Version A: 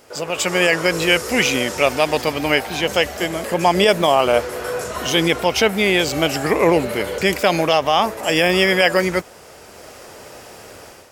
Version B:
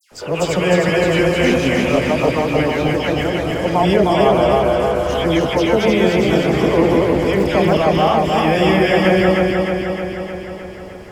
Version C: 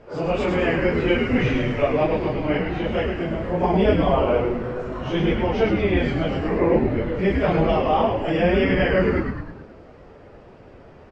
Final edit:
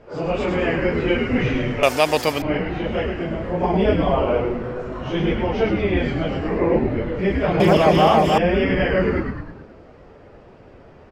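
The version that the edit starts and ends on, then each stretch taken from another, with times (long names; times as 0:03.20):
C
0:01.83–0:02.42: punch in from A
0:07.60–0:08.38: punch in from B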